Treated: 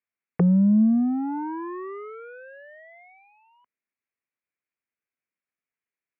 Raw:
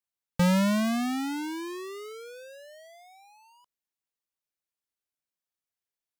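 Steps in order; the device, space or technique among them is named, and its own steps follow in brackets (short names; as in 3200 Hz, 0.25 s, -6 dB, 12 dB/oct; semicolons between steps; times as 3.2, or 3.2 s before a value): envelope filter bass rig (envelope low-pass 290–2400 Hz down, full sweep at -23.5 dBFS; speaker cabinet 86–2200 Hz, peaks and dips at 240 Hz +5 dB, 390 Hz +3 dB, 830 Hz -5 dB)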